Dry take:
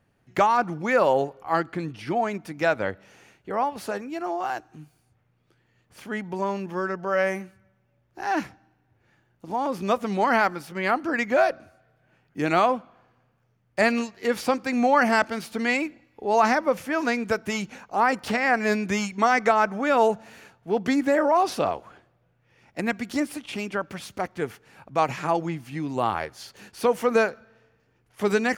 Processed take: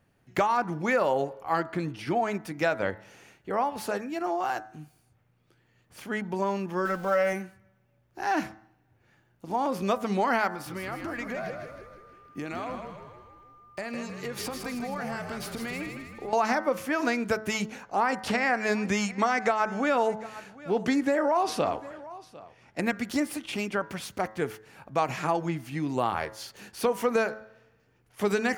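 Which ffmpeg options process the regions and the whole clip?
ffmpeg -i in.wav -filter_complex "[0:a]asettb=1/sr,asplit=3[link_01][link_02][link_03];[link_01]atrim=end=6.854[link_04];[link_02]atrim=start=6.85:end=7.33,asetpts=PTS-STARTPTS,afade=type=in:duration=0.004:curve=qsin,afade=type=out:start_time=0.476:duration=0.004:curve=qsin,aeval=exprs='val(0)+0.5*0.00891*sgn(val(0))':channel_layout=same,aecho=1:1:3.8:0.52,atrim=end_sample=21168[link_05];[link_03]atrim=start=7.326[link_06];[link_04][link_05]acrossfade=duration=0.004:curve1=hsin:curve2=qsin[link_07];[link_07][link_06]acrossfade=duration=0.004:curve1=qsin:curve2=hsin,asettb=1/sr,asplit=3[link_08][link_09][link_10];[link_08]atrim=end=10.504[link_11];[link_09]atrim=start=10.5:end=16.33,asetpts=PTS-STARTPTS,afade=type=in:duration=0.004:curve=qsin,afade=type=out:start_time=5.826:duration=0.004:curve=qsin,acompressor=threshold=-31dB:ratio=10:attack=3.2:release=140:knee=1:detection=peak,asplit=8[link_12][link_13][link_14][link_15][link_16][link_17][link_18][link_19];[link_13]adelay=158,afreqshift=-48,volume=-6dB[link_20];[link_14]adelay=316,afreqshift=-96,volume=-11.5dB[link_21];[link_15]adelay=474,afreqshift=-144,volume=-17dB[link_22];[link_16]adelay=632,afreqshift=-192,volume=-22.5dB[link_23];[link_17]adelay=790,afreqshift=-240,volume=-28.1dB[link_24];[link_18]adelay=948,afreqshift=-288,volume=-33.6dB[link_25];[link_19]adelay=1106,afreqshift=-336,volume=-39.1dB[link_26];[link_12][link_20][link_21][link_22][link_23][link_24][link_25][link_26]amix=inputs=8:normalize=0,atrim=end_sample=257103,aeval=exprs='val(0)+0.00251*sin(2*PI*1200*n/s)':channel_layout=same[link_27];[link_10]atrim=start=16.326[link_28];[link_11][link_27]acrossfade=duration=0.004:curve1=hsin:curve2=qsin[link_29];[link_29][link_28]acrossfade=duration=0.004:curve1=qsin:curve2=hsin,asettb=1/sr,asplit=3[link_30][link_31][link_32];[link_30]atrim=end=17.834[link_33];[link_31]atrim=start=17.83:end=22.82,asetpts=PTS-STARTPTS,afade=type=in:duration=0.004:curve=qsin,afade=type=out:start_time=4.986:duration=0.004:curve=qsin,lowpass=11000,aecho=1:1:750:0.0794,atrim=end_sample=220059[link_34];[link_32]atrim=start=22.816[link_35];[link_33][link_34]acrossfade=duration=0.004:curve1=hsin:curve2=qsin[link_36];[link_36][link_35]acrossfade=duration=0.004:curve1=qsin:curve2=hsin,highshelf=frequency=11000:gain=4.5,bandreject=frequency=108.3:width_type=h:width=4,bandreject=frequency=216.6:width_type=h:width=4,bandreject=frequency=324.9:width_type=h:width=4,bandreject=frequency=433.2:width_type=h:width=4,bandreject=frequency=541.5:width_type=h:width=4,bandreject=frequency=649.8:width_type=h:width=4,bandreject=frequency=758.1:width_type=h:width=4,bandreject=frequency=866.4:width_type=h:width=4,bandreject=frequency=974.7:width_type=h:width=4,bandreject=frequency=1083:width_type=h:width=4,bandreject=frequency=1191.3:width_type=h:width=4,bandreject=frequency=1299.6:width_type=h:width=4,bandreject=frequency=1407.9:width_type=h:width=4,bandreject=frequency=1516.2:width_type=h:width=4,bandreject=frequency=1624.5:width_type=h:width=4,bandreject=frequency=1732.8:width_type=h:width=4,bandreject=frequency=1841.1:width_type=h:width=4,bandreject=frequency=1949.4:width_type=h:width=4,bandreject=frequency=2057.7:width_type=h:width=4,acompressor=threshold=-22dB:ratio=3" out.wav

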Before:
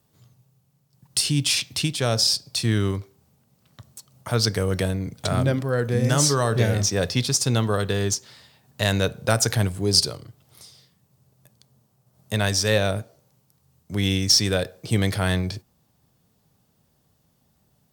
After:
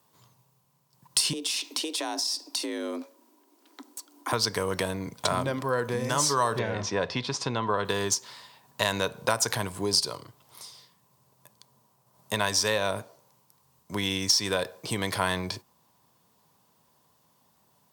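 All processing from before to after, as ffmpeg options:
ffmpeg -i in.wav -filter_complex "[0:a]asettb=1/sr,asplit=3[link_01][link_02][link_03];[link_01]atrim=end=1.334[link_04];[link_02]atrim=start=1.33:end=4.33,asetpts=PTS-STARTPTS,afade=type=in:duration=0.004:curve=qsin,afade=type=out:start_time=2.996:duration=0.004:curve=qsin,acompressor=threshold=-27dB:ratio=10:attack=3.2:release=140:knee=1:detection=peak,equalizer=frequency=920:width_type=o:width=0.84:gain=-3.5,afreqshift=160[link_05];[link_03]atrim=start=4.326[link_06];[link_04][link_05]acrossfade=duration=0.004:curve1=hsin:curve2=qsin[link_07];[link_07][link_06]acrossfade=duration=0.004:curve1=qsin:curve2=hsin,asettb=1/sr,asplit=3[link_08][link_09][link_10];[link_08]atrim=end=6.594[link_11];[link_09]atrim=start=6.59:end=7.85,asetpts=PTS-STARTPTS,afade=type=in:duration=0.004:curve=qsin,afade=type=out:start_time=1.256:duration=0.004:curve=qsin,lowpass=3100,bandreject=frequency=1200:width=25[link_12];[link_10]atrim=start=7.846[link_13];[link_11][link_12]acrossfade=duration=0.004:curve1=hsin:curve2=qsin[link_14];[link_14][link_13]acrossfade=duration=0.004:curve1=qsin:curve2=hsin,acompressor=threshold=-22dB:ratio=6,highpass=frequency=380:poles=1,equalizer=frequency=1000:width=5.7:gain=14,volume=2dB" out.wav

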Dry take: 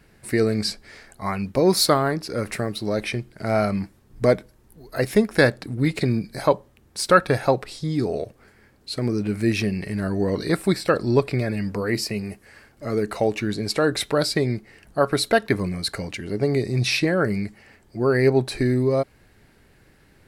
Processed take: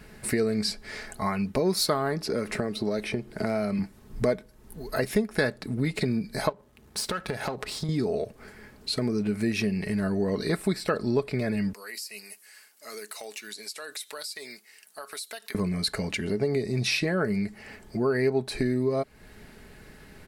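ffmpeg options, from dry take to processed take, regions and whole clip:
ffmpeg -i in.wav -filter_complex "[0:a]asettb=1/sr,asplit=3[link_01][link_02][link_03];[link_01]atrim=end=2.264[link_04];[link_02]atrim=start=2.26:end=3.79,asetpts=PTS-STARTPTS,afade=type=in:duration=0.004:curve=qsin,afade=type=out:start_time=1.526:duration=0.004:curve=qsin,equalizer=frequency=400:width_type=o:width=2.6:gain=6,acrossover=split=490|1600|8000[link_05][link_06][link_07][link_08];[link_05]acompressor=threshold=-28dB:ratio=3[link_09];[link_06]acompressor=threshold=-35dB:ratio=3[link_10];[link_07]acompressor=threshold=-38dB:ratio=3[link_11];[link_08]acompressor=threshold=-56dB:ratio=3[link_12];[link_09][link_10][link_11][link_12]amix=inputs=4:normalize=0[link_13];[link_03]atrim=start=3.786[link_14];[link_04][link_13]acrossfade=duration=0.004:curve1=hsin:curve2=qsin[link_15];[link_15][link_14]acrossfade=duration=0.004:curve1=qsin:curve2=hsin,asettb=1/sr,asplit=3[link_16][link_17][link_18];[link_16]atrim=end=6.494[link_19];[link_17]atrim=start=6.49:end=7.89,asetpts=PTS-STARTPTS,afade=type=in:duration=0.004:curve=qsin,afade=type=out:start_time=1.396:duration=0.004:curve=qsin,aeval=exprs='if(lt(val(0),0),0.447*val(0),val(0))':channel_layout=same,highpass=40,acompressor=threshold=-30dB:ratio=4:attack=3.2:release=140:knee=1:detection=peak[link_20];[link_18]atrim=start=7.886[link_21];[link_19][link_20]acrossfade=duration=0.004:curve1=hsin:curve2=qsin[link_22];[link_22][link_21]acrossfade=duration=0.004:curve1=qsin:curve2=hsin,asettb=1/sr,asplit=3[link_23][link_24][link_25];[link_23]atrim=end=11.734[link_26];[link_24]atrim=start=11.73:end=15.55,asetpts=PTS-STARTPTS,afade=type=in:duration=0.004:curve=qsin,afade=type=out:start_time=3.816:duration=0.004:curve=qsin,highpass=210,aderivative,acompressor=threshold=-41dB:ratio=6:attack=3.2:release=140:knee=1:detection=peak[link_27];[link_25]atrim=start=15.546[link_28];[link_26][link_27]acrossfade=duration=0.004:curve1=hsin:curve2=qsin[link_29];[link_29][link_28]acrossfade=duration=0.004:curve1=qsin:curve2=hsin,aecho=1:1:4.7:0.38,acompressor=threshold=-35dB:ratio=2.5,volume=6dB" out.wav

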